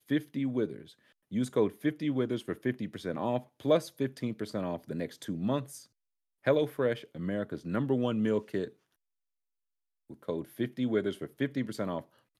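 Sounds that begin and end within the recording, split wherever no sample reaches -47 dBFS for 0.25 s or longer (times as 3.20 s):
1.31–5.84 s
6.44–8.70 s
10.10–12.03 s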